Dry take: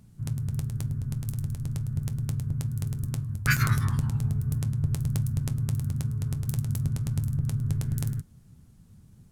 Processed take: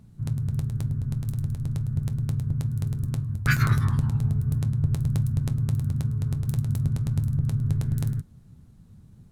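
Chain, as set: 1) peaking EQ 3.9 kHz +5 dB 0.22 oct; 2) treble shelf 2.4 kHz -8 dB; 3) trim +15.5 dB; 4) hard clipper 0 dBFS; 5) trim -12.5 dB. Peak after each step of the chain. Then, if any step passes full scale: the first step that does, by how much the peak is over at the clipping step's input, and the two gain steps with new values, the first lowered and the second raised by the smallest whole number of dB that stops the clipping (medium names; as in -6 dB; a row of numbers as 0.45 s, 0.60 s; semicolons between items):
-6.0 dBFS, -12.5 dBFS, +3.0 dBFS, 0.0 dBFS, -12.5 dBFS; step 3, 3.0 dB; step 3 +12.5 dB, step 5 -9.5 dB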